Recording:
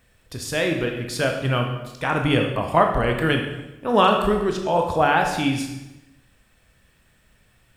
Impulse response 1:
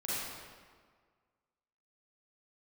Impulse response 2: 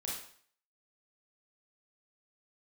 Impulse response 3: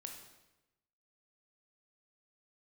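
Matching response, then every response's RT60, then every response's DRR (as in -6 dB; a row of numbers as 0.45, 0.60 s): 3; 1.7, 0.55, 1.0 s; -9.5, -4.5, 2.5 dB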